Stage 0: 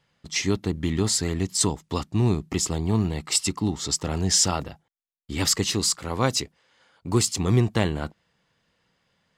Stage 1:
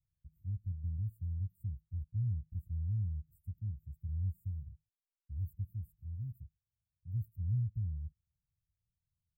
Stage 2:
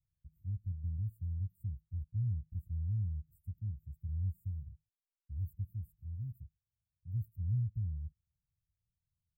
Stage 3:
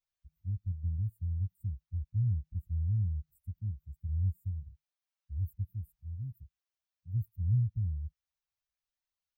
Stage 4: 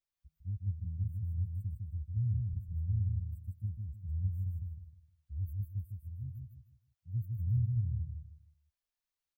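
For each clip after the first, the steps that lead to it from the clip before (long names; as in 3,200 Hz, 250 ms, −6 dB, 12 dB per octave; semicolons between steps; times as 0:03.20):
inverse Chebyshev band-stop filter 560–6,200 Hz, stop band 80 dB; level −4.5 dB
no processing that can be heard
spectral dynamics exaggerated over time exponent 1.5; level +6 dB
repeating echo 155 ms, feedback 31%, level −3.5 dB; level −3 dB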